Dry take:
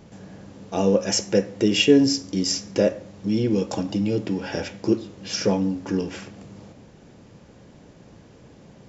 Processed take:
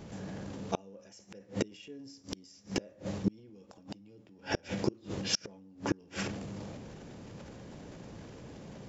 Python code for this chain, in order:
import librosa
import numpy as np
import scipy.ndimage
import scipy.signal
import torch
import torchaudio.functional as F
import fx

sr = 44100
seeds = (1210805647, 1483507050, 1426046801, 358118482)

y = fx.transient(x, sr, attack_db=0, sustain_db=8)
y = fx.gate_flip(y, sr, shuts_db=-16.0, range_db=-33)